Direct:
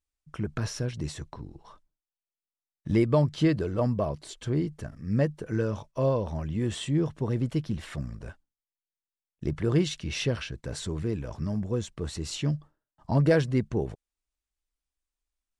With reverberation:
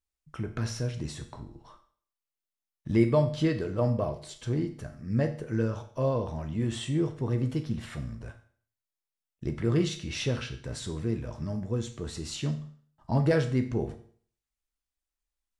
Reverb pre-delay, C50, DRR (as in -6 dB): 8 ms, 11.5 dB, 5.5 dB